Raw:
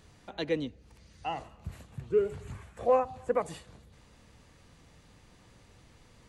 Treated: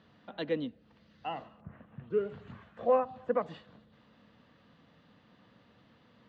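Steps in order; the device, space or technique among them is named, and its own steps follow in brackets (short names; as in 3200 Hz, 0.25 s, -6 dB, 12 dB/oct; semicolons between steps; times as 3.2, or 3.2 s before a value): kitchen radio (speaker cabinet 170–3600 Hz, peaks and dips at 220 Hz +5 dB, 380 Hz -7 dB, 850 Hz -4 dB, 2300 Hz -8 dB); 1.6–2.09 LPF 1700 Hz -> 3200 Hz 24 dB/oct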